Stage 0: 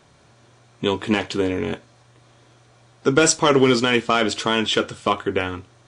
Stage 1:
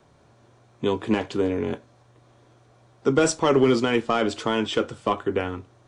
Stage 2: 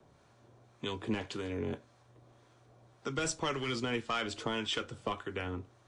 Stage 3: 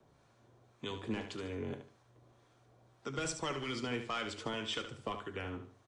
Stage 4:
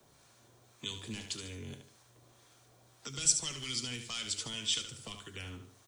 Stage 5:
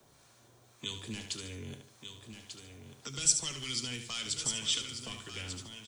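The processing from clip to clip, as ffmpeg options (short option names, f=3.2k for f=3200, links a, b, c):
-filter_complex "[0:a]acrossover=split=240|1300|4700[a][b][c][d];[b]acontrast=81[e];[a][e][c][d]amix=inputs=4:normalize=0,lowshelf=f=180:g=8.5,volume=-9dB"
-filter_complex "[0:a]acrossover=split=130|1400[a][b][c];[b]acompressor=threshold=-29dB:ratio=6[d];[a][d][c]amix=inputs=3:normalize=0,acrossover=split=880[e][f];[e]aeval=exprs='val(0)*(1-0.5/2+0.5/2*cos(2*PI*1.8*n/s))':c=same[g];[f]aeval=exprs='val(0)*(1-0.5/2-0.5/2*cos(2*PI*1.8*n/s))':c=same[h];[g][h]amix=inputs=2:normalize=0,volume=-3.5dB"
-af "aecho=1:1:73|146|219:0.355|0.106|0.0319,volume=-4dB"
-filter_complex "[0:a]acrossover=split=210|3000[a][b][c];[b]acompressor=threshold=-52dB:ratio=6[d];[a][d][c]amix=inputs=3:normalize=0,crystalizer=i=5.5:c=0"
-af "aecho=1:1:1192:0.376,volume=1dB"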